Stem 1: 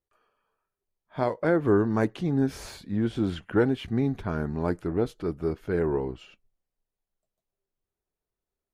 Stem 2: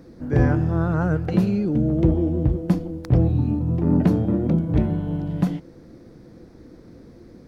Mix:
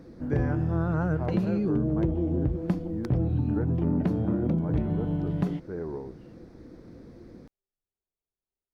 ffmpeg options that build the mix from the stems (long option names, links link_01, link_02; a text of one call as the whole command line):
ffmpeg -i stem1.wav -i stem2.wav -filter_complex "[0:a]lowpass=1300,volume=-9dB[link_01];[1:a]highshelf=frequency=4900:gain=-5.5,volume=-2dB[link_02];[link_01][link_02]amix=inputs=2:normalize=0,acompressor=threshold=-22dB:ratio=5" out.wav